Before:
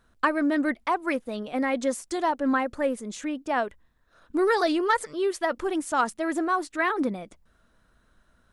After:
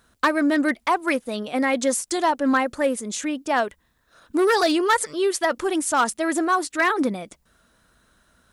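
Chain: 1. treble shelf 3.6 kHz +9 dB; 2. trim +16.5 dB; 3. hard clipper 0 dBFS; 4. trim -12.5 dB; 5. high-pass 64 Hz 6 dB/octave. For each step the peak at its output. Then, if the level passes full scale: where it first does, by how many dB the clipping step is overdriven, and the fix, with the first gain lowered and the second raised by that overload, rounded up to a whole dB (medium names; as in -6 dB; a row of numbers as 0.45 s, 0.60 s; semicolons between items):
-8.5 dBFS, +8.0 dBFS, 0.0 dBFS, -12.5 dBFS, -11.5 dBFS; step 2, 8.0 dB; step 2 +8.5 dB, step 4 -4.5 dB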